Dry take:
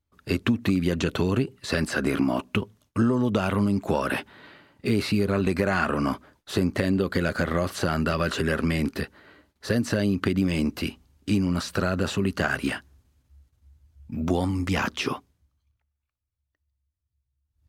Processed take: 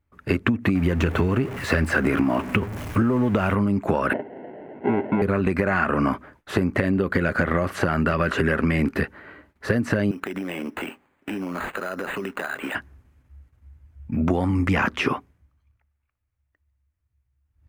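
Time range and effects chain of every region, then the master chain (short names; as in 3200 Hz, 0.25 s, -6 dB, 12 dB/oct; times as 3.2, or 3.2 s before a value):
0.75–3.55 zero-crossing step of -33 dBFS + bell 82 Hz +9 dB 0.23 oct
4.13–5.22 delta modulation 16 kbps, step -41 dBFS + sample-rate reducer 1200 Hz + speaker cabinet 220–2300 Hz, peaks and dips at 230 Hz +3 dB, 390 Hz +5 dB, 640 Hz +5 dB, 1200 Hz -8 dB, 1700 Hz -9 dB
10.11–12.75 HPF 360 Hz + compressor 10:1, threshold -32 dBFS + careless resampling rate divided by 8×, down none, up hold
whole clip: resonant high shelf 2900 Hz -9.5 dB, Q 1.5; compressor, threshold -24 dBFS; gain +7 dB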